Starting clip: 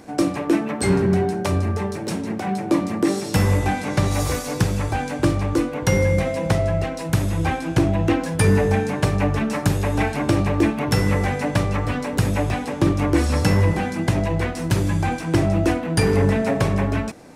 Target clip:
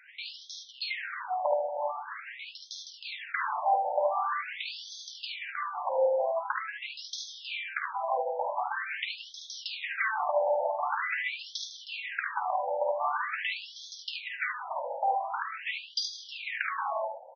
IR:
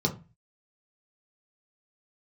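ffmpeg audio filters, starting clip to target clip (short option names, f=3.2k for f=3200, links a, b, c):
-af "aecho=1:1:51|73:0.473|0.596,afftfilt=real='re*between(b*sr/1024,670*pow(4600/670,0.5+0.5*sin(2*PI*0.45*pts/sr))/1.41,670*pow(4600/670,0.5+0.5*sin(2*PI*0.45*pts/sr))*1.41)':imag='im*between(b*sr/1024,670*pow(4600/670,0.5+0.5*sin(2*PI*0.45*pts/sr))/1.41,670*pow(4600/670,0.5+0.5*sin(2*PI*0.45*pts/sr))*1.41)':win_size=1024:overlap=0.75"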